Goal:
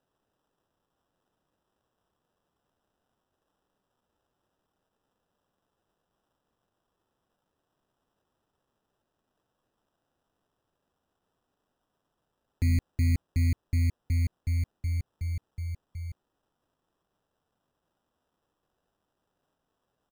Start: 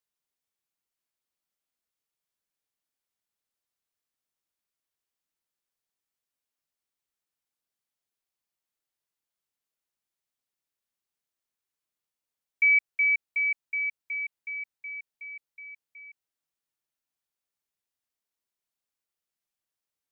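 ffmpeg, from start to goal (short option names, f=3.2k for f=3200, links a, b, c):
-af "highshelf=f=2.1k:g=11.5,aresample=16000,asoftclip=type=tanh:threshold=-27dB,aresample=44100,acrusher=samples=20:mix=1:aa=0.000001,volume=5dB"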